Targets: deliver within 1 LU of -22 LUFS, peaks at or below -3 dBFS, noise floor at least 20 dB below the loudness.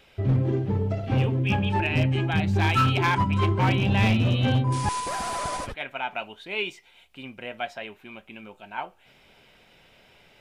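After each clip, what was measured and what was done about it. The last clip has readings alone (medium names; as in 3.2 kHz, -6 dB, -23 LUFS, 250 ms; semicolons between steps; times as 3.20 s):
clipped samples 1.0%; clipping level -16.0 dBFS; loudness -24.5 LUFS; peak level -16.0 dBFS; loudness target -22.0 LUFS
-> clip repair -16 dBFS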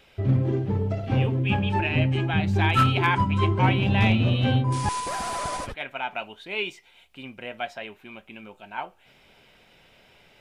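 clipped samples 0.0%; loudness -24.0 LUFS; peak level -7.0 dBFS; loudness target -22.0 LUFS
-> trim +2 dB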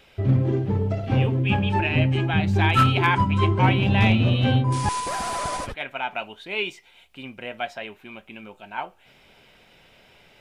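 loudness -22.0 LUFS; peak level -5.0 dBFS; noise floor -56 dBFS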